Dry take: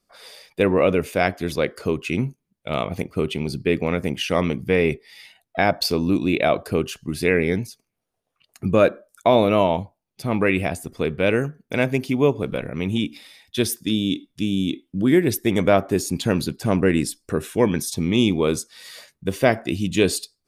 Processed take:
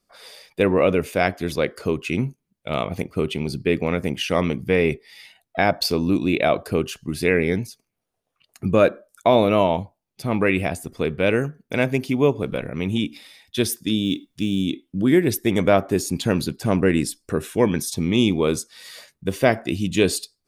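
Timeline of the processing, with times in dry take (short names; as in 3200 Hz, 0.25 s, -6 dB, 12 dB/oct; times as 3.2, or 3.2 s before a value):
14.04–14.62 companded quantiser 8-bit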